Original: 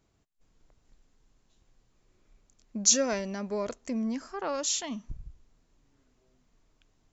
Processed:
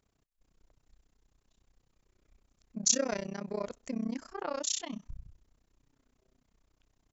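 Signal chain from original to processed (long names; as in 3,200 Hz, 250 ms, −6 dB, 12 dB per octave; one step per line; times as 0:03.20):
amplitude modulation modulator 31 Hz, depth 95%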